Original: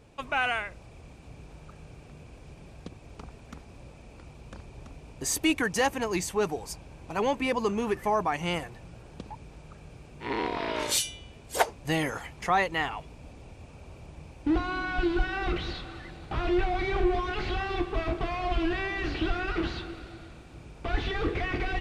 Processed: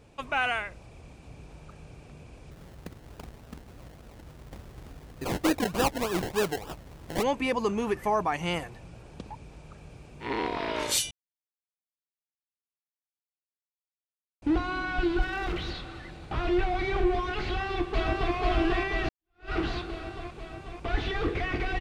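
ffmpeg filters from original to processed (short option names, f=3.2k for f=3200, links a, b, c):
-filter_complex "[0:a]asplit=3[a][b][c];[a]afade=t=out:st=2.5:d=0.02[d];[b]acrusher=samples=29:mix=1:aa=0.000001:lfo=1:lforange=17.4:lforate=3.4,afade=t=in:st=2.5:d=0.02,afade=t=out:st=7.22:d=0.02[e];[c]afade=t=in:st=7.22:d=0.02[f];[d][e][f]amix=inputs=3:normalize=0,asettb=1/sr,asplit=3[g][h][i];[g]atrim=end=15.224[j];[h]atrim=start=15.22:end=15.7,asetpts=PTS-STARTPTS,afade=t=in:d=0.004:c=qsin,afade=t=out:st=0.476:d=0.004:c=qsin,asoftclip=type=hard:threshold=-27dB[k];[i]atrim=start=15.696[l];[j][k]acrossfade=d=0.004:c1=hsin:c2=qsin[m];[m][l]acrossfade=d=0.004:c1=qsin:c2=hsin,asplit=2[n][o];[o]afade=t=in:st=17.44:d=0.01,afade=t=out:st=18.34:d=0.01,aecho=0:1:490|980|1470|1960|2450|2940|3430|3920|4410|4900|5390|5880:0.841395|0.588977|0.412284|0.288599|0.202019|0.141413|0.0989893|0.0692925|0.0485048|0.0339533|0.0237673|0.0166371[p];[n][p]amix=inputs=2:normalize=0,asplit=4[q][r][s][t];[q]atrim=end=11.11,asetpts=PTS-STARTPTS,afade=t=out:st=11.106:d=0.004:c=hsin[u];[r]atrim=start=11.11:end=14.42,asetpts=PTS-STARTPTS,volume=0[v];[s]atrim=start=14.42:end=19.09,asetpts=PTS-STARTPTS,afade=t=in:d=0.004:c=hsin,afade=t=out:st=4.666:d=0.004:c=hsin[w];[t]atrim=start=19.09,asetpts=PTS-STARTPTS,afade=t=in:d=0.43:c=exp[x];[u][v][w][x]concat=n=4:v=0:a=1"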